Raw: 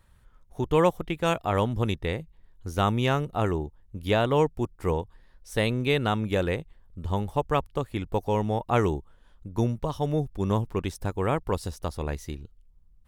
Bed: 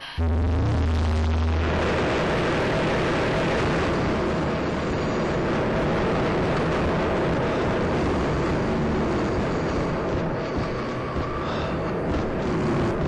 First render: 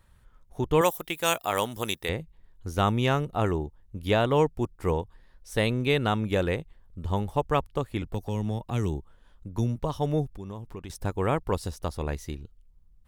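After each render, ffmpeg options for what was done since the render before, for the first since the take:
ffmpeg -i in.wav -filter_complex "[0:a]asettb=1/sr,asplit=3[link_01][link_02][link_03];[link_01]atrim=end=0.814[link_04];[link_02]atrim=start=0.81:end=2.09,asetpts=PTS-STARTPTS,afade=type=in:duration=0.004:curve=qsin,afade=type=out:start_time=1.276:duration=0.004:curve=qsin,aemphasis=mode=production:type=riaa[link_05];[link_03]atrim=start=2.086[link_06];[link_04][link_05]acrossfade=duration=0.004:curve1=hsin:curve2=qsin[link_07];[link_07][link_06]acrossfade=duration=0.004:curve1=qsin:curve2=hsin,asettb=1/sr,asplit=3[link_08][link_09][link_10];[link_08]atrim=end=8.024[link_11];[link_09]atrim=start=8.02:end=9.76,asetpts=PTS-STARTPTS,afade=type=in:duration=0.004:curve=qsin,afade=type=out:start_time=1.736:duration=0.004:curve=qsin,acrossover=split=280|3000[link_12][link_13][link_14];[link_13]acompressor=threshold=-35dB:ratio=6:attack=3.2:release=140:knee=2.83:detection=peak[link_15];[link_12][link_15][link_14]amix=inputs=3:normalize=0[link_16];[link_10]atrim=start=9.756[link_17];[link_11][link_16]acrossfade=duration=0.004:curve1=hsin:curve2=qsin[link_18];[link_18][link_17]acrossfade=duration=0.004:curve1=qsin:curve2=hsin,asettb=1/sr,asplit=3[link_19][link_20][link_21];[link_19]atrim=end=10.264[link_22];[link_20]atrim=start=10.26:end=10.9,asetpts=PTS-STARTPTS,afade=type=in:duration=0.004:curve=qsin,afade=type=out:start_time=0.636:duration=0.004:curve=qsin,acompressor=threshold=-38dB:ratio=3:attack=3.2:release=140:knee=1:detection=peak[link_23];[link_21]atrim=start=10.896[link_24];[link_22][link_23]acrossfade=duration=0.004:curve1=hsin:curve2=qsin[link_25];[link_25][link_24]acrossfade=duration=0.004:curve1=qsin:curve2=hsin" out.wav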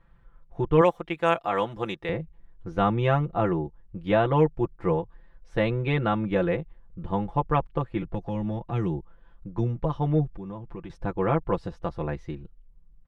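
ffmpeg -i in.wav -af "lowpass=2000,aecho=1:1:5.9:0.8" out.wav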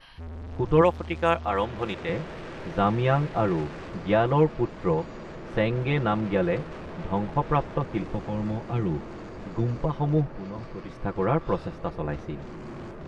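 ffmpeg -i in.wav -i bed.wav -filter_complex "[1:a]volume=-16dB[link_01];[0:a][link_01]amix=inputs=2:normalize=0" out.wav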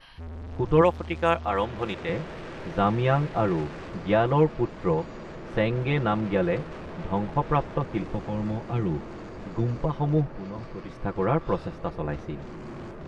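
ffmpeg -i in.wav -af anull out.wav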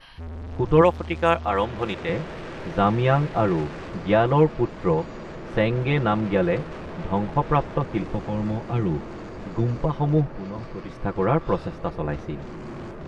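ffmpeg -i in.wav -af "volume=3dB" out.wav

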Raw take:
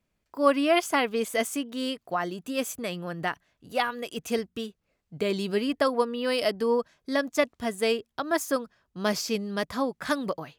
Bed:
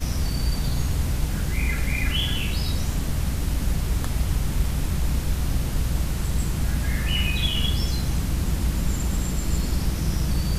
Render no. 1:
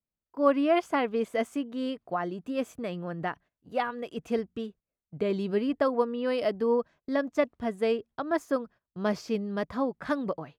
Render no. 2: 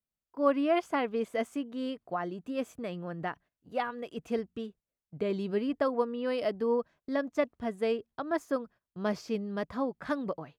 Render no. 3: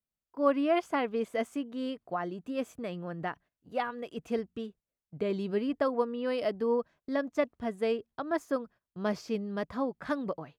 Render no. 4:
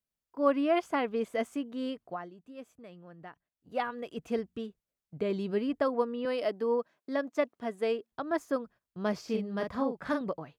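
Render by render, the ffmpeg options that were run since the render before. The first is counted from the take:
ffmpeg -i in.wav -af "agate=range=-17dB:threshold=-48dB:ratio=16:detection=peak,lowpass=frequency=1100:poles=1" out.wav
ffmpeg -i in.wav -af "volume=-3dB" out.wav
ffmpeg -i in.wav -af anull out.wav
ffmpeg -i in.wav -filter_complex "[0:a]asettb=1/sr,asplit=3[link_01][link_02][link_03];[link_01]atrim=end=6.254[link_04];[link_02]atrim=start=6.25:end=8.12,asetpts=PTS-STARTPTS,afade=type=in:duration=0.004:curve=qsin,afade=type=out:start_time=1.866:duration=0.004:curve=qsin,highpass=240[link_05];[link_03]atrim=start=8.116[link_06];[link_04][link_05]acrossfade=duration=0.004:curve1=hsin:curve2=qsin[link_07];[link_07][link_06]acrossfade=duration=0.004:curve1=qsin:curve2=hsin,asettb=1/sr,asplit=3[link_08][link_09][link_10];[link_08]atrim=end=9.244[link_11];[link_09]atrim=start=9.24:end=10.21,asetpts=PTS-STARTPTS,afade=type=in:duration=0.004:curve=qsin,afade=type=out:start_time=0.966:duration=0.004:curve=qsin,asplit=2[link_12][link_13];[link_13]adelay=41,volume=-5dB[link_14];[link_12][link_14]amix=inputs=2:normalize=0,atrim=end_sample=42777[link_15];[link_10]atrim=start=10.206[link_16];[link_11][link_15]acrossfade=duration=0.004:curve1=hsin:curve2=qsin[link_17];[link_17][link_16]acrossfade=duration=0.004:curve1=qsin:curve2=hsin,asplit=3[link_18][link_19][link_20];[link_18]atrim=end=2.3,asetpts=PTS-STARTPTS,afade=type=out:start_time=1.99:duration=0.31:silence=0.237137[link_21];[link_19]atrim=start=2.3:end=3.48,asetpts=PTS-STARTPTS,volume=-12.5dB[link_22];[link_20]atrim=start=3.48,asetpts=PTS-STARTPTS,afade=type=in:duration=0.31:silence=0.237137[link_23];[link_21][link_22][link_23]concat=n=3:v=0:a=1" out.wav

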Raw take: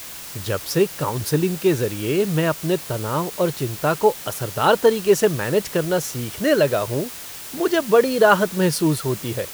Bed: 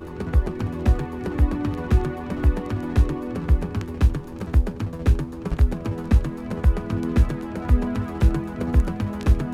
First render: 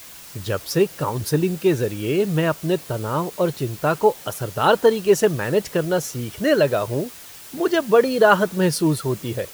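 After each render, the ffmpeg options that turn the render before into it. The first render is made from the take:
ffmpeg -i in.wav -af "afftdn=noise_reduction=6:noise_floor=-36" out.wav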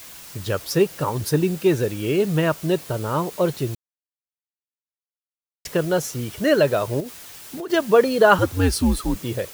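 ffmpeg -i in.wav -filter_complex "[0:a]asettb=1/sr,asplit=3[link_01][link_02][link_03];[link_01]atrim=end=7.004[link_04];[link_02]atrim=start=7:end=7.7,asetpts=PTS-STARTPTS,afade=type=in:duration=0.004:curve=qsin,afade=type=out:start_time=0.696:duration=0.004:curve=qsin,acompressor=threshold=-28dB:ratio=6:attack=3.2:release=140:knee=1:detection=peak[link_05];[link_03]atrim=start=7.696[link_06];[link_04][link_05]acrossfade=duration=0.004:curve1=hsin:curve2=qsin[link_07];[link_07][link_06]acrossfade=duration=0.004:curve1=qsin:curve2=hsin,asettb=1/sr,asplit=3[link_08][link_09][link_10];[link_08]atrim=end=8.384[link_11];[link_09]atrim=start=8.38:end=9.16,asetpts=PTS-STARTPTS,afade=type=in:duration=0.004:curve=qsin,afade=type=out:start_time=0.776:duration=0.004:curve=qsin,afreqshift=-92[link_12];[link_10]atrim=start=9.156[link_13];[link_11][link_12]acrossfade=duration=0.004:curve1=hsin:curve2=qsin[link_14];[link_14][link_13]acrossfade=duration=0.004:curve1=qsin:curve2=hsin,asplit=3[link_15][link_16][link_17];[link_15]atrim=end=3.75,asetpts=PTS-STARTPTS,afade=type=out:start_time=3.746:duration=0.004:curve=hsin[link_18];[link_16]atrim=start=3.75:end=5.65,asetpts=PTS-STARTPTS,volume=0[link_19];[link_17]atrim=start=5.65,asetpts=PTS-STARTPTS,afade=type=in:duration=0.004:curve=hsin[link_20];[link_18][link_19][link_20]concat=n=3:v=0:a=1" out.wav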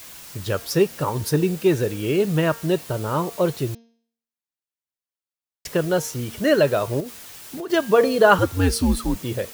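ffmpeg -i in.wav -af "bandreject=frequency=230.4:width_type=h:width=4,bandreject=frequency=460.8:width_type=h:width=4,bandreject=frequency=691.2:width_type=h:width=4,bandreject=frequency=921.6:width_type=h:width=4,bandreject=frequency=1152:width_type=h:width=4,bandreject=frequency=1382.4:width_type=h:width=4,bandreject=frequency=1612.8:width_type=h:width=4,bandreject=frequency=1843.2:width_type=h:width=4,bandreject=frequency=2073.6:width_type=h:width=4,bandreject=frequency=2304:width_type=h:width=4,bandreject=frequency=2534.4:width_type=h:width=4,bandreject=frequency=2764.8:width_type=h:width=4,bandreject=frequency=2995.2:width_type=h:width=4,bandreject=frequency=3225.6:width_type=h:width=4,bandreject=frequency=3456:width_type=h:width=4,bandreject=frequency=3686.4:width_type=h:width=4,bandreject=frequency=3916.8:width_type=h:width=4,bandreject=frequency=4147.2:width_type=h:width=4,bandreject=frequency=4377.6:width_type=h:width=4,bandreject=frequency=4608:width_type=h:width=4,bandreject=frequency=4838.4:width_type=h:width=4,bandreject=frequency=5068.8:width_type=h:width=4,bandreject=frequency=5299.2:width_type=h:width=4,bandreject=frequency=5529.6:width_type=h:width=4,bandreject=frequency=5760:width_type=h:width=4,bandreject=frequency=5990.4:width_type=h:width=4,bandreject=frequency=6220.8:width_type=h:width=4,bandreject=frequency=6451.2:width_type=h:width=4" out.wav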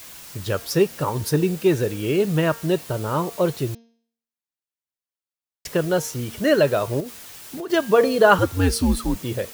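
ffmpeg -i in.wav -af anull out.wav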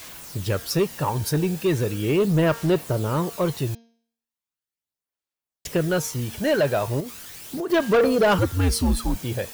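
ffmpeg -i in.wav -af "aphaser=in_gain=1:out_gain=1:delay=1.3:decay=0.36:speed=0.38:type=sinusoidal,asoftclip=type=tanh:threshold=-13.5dB" out.wav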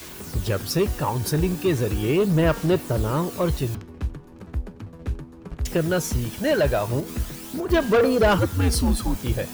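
ffmpeg -i in.wav -i bed.wav -filter_complex "[1:a]volume=-10dB[link_01];[0:a][link_01]amix=inputs=2:normalize=0" out.wav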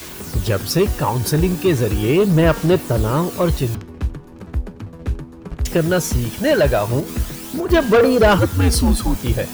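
ffmpeg -i in.wav -af "volume=5.5dB" out.wav

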